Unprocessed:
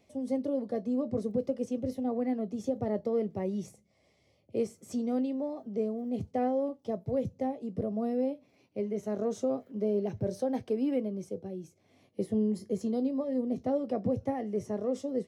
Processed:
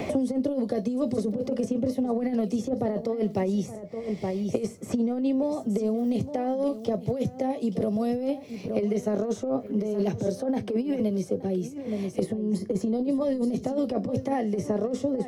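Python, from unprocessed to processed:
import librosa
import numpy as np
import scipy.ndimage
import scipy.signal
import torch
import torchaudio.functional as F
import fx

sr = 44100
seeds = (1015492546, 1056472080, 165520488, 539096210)

p1 = fx.over_compress(x, sr, threshold_db=-32.0, ratio=-0.5)
p2 = p1 + fx.echo_single(p1, sr, ms=871, db=-16.0, dry=0)
p3 = fx.band_squash(p2, sr, depth_pct=100)
y = F.gain(torch.from_numpy(p3), 6.5).numpy()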